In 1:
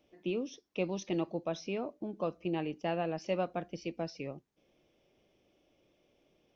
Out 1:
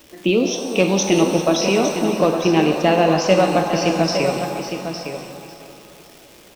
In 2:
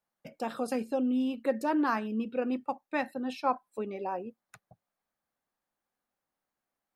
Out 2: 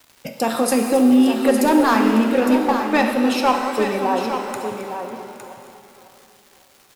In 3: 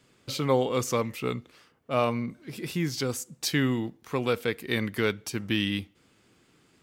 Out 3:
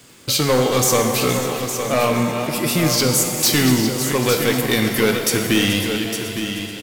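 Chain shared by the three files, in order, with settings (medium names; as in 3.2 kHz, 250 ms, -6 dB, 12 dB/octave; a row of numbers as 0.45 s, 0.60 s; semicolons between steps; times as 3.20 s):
backward echo that repeats 275 ms, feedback 59%, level -13.5 dB; treble shelf 5.3 kHz +12 dB; in parallel at -3 dB: compression, threshold -34 dBFS; on the sum: hard clipper -20 dBFS; crackle 410 per s -48 dBFS; on a send: delay 859 ms -8.5 dB; on the sum: pitch-shifted reverb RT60 1.7 s, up +7 st, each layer -8 dB, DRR 5 dB; normalise loudness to -18 LUFS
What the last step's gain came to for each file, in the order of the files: +14.0 dB, +10.0 dB, +7.5 dB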